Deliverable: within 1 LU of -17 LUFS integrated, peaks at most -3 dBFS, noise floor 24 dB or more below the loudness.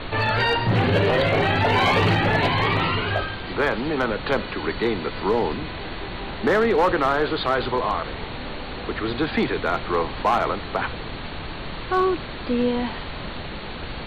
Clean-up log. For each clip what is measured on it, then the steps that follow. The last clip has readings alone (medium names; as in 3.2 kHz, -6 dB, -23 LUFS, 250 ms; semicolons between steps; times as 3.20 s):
clipped samples 0.4%; clipping level -12.5 dBFS; noise floor -33 dBFS; noise floor target -47 dBFS; loudness -23.0 LUFS; peak level -12.5 dBFS; loudness target -17.0 LUFS
-> clip repair -12.5 dBFS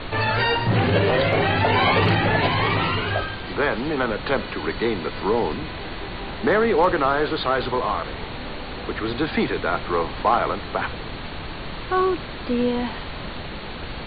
clipped samples 0.0%; noise floor -33 dBFS; noise floor target -47 dBFS
-> noise print and reduce 14 dB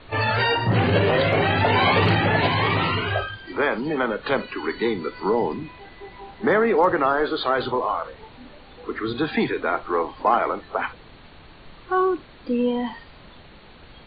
noise floor -47 dBFS; loudness -22.0 LUFS; peak level -5.0 dBFS; loudness target -17.0 LUFS
-> trim +5 dB; peak limiter -3 dBFS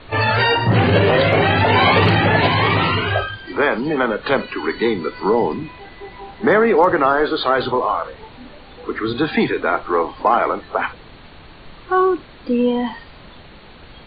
loudness -17.5 LUFS; peak level -3.0 dBFS; noise floor -42 dBFS